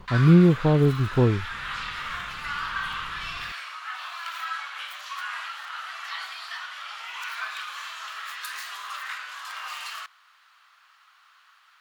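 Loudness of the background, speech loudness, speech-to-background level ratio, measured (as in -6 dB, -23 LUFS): -33.5 LUFS, -19.5 LUFS, 14.0 dB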